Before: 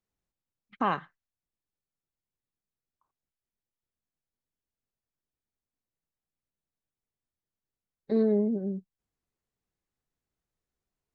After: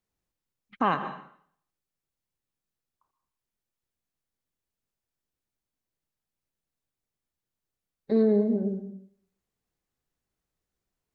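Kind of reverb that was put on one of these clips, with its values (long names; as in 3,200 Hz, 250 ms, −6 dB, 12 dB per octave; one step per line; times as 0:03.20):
dense smooth reverb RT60 0.61 s, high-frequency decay 0.95×, pre-delay 110 ms, DRR 10 dB
level +2.5 dB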